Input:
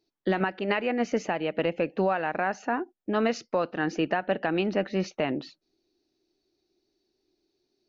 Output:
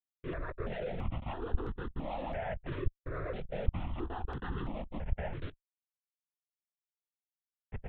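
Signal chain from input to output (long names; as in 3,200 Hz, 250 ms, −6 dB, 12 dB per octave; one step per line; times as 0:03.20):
random phases in long frames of 50 ms
camcorder AGC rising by 10 dB per second
reverb reduction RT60 1.6 s
downward compressor 2.5 to 1, threshold −37 dBFS, peak gain reduction 12.5 dB
comparator with hysteresis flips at −42.5 dBFS
high-frequency loss of the air 400 metres
double-tracking delay 13 ms −9 dB
linear-prediction vocoder at 8 kHz whisper
step-sequenced phaser 3 Hz 210–2,300 Hz
level +5.5 dB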